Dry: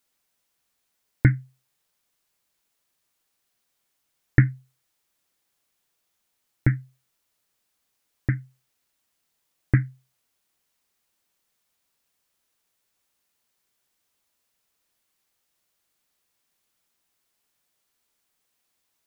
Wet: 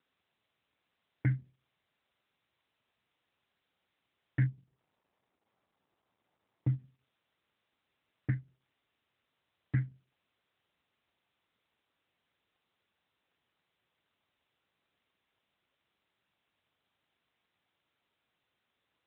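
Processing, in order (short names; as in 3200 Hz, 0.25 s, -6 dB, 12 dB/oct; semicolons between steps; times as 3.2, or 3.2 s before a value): limiter -13.5 dBFS, peak gain reduction 11 dB; 4.46–6.79 polynomial smoothing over 65 samples; gain -5 dB; AMR-NB 12.2 kbps 8000 Hz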